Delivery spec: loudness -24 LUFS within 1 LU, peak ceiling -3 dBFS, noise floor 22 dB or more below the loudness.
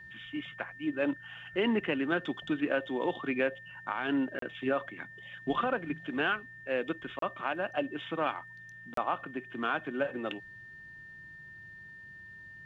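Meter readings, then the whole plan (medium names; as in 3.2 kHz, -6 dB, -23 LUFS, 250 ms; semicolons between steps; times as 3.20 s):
dropouts 3; longest dropout 33 ms; steady tone 1.8 kHz; tone level -47 dBFS; loudness -33.5 LUFS; peak level -17.5 dBFS; loudness target -24.0 LUFS
-> interpolate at 4.39/7.19/8.94 s, 33 ms; band-stop 1.8 kHz, Q 30; trim +9.5 dB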